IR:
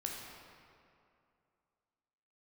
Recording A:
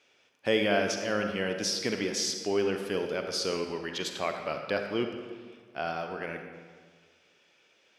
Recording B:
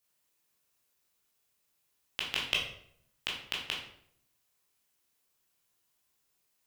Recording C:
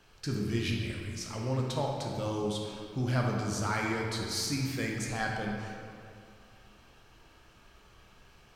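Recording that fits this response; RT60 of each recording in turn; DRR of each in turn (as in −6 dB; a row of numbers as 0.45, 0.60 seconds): C; 1.6, 0.65, 2.5 seconds; 4.5, −3.5, −1.0 decibels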